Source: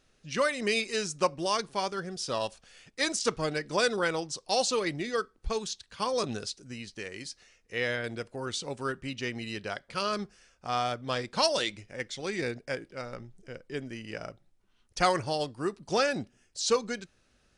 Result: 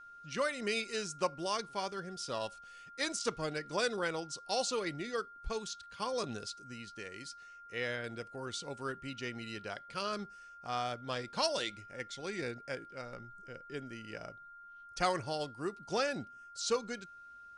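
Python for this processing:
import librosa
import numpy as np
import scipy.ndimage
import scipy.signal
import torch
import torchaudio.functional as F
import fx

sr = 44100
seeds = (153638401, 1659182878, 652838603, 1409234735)

y = x + 10.0 ** (-44.0 / 20.0) * np.sin(2.0 * np.pi * 1400.0 * np.arange(len(x)) / sr)
y = F.gain(torch.from_numpy(y), -6.5).numpy()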